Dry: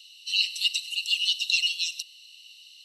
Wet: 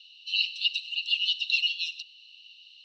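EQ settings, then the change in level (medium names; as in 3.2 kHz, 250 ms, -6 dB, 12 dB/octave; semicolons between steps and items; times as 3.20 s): elliptic high-pass 2.5 kHz, stop band 50 dB; low-pass 4 kHz 24 dB/octave; 0.0 dB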